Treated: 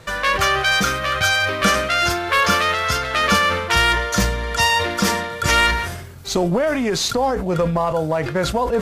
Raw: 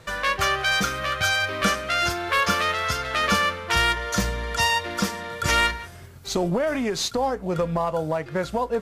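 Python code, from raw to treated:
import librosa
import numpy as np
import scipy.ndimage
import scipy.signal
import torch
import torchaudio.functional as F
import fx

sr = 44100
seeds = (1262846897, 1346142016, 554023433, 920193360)

y = fx.sustainer(x, sr, db_per_s=52.0)
y = y * 10.0 ** (4.5 / 20.0)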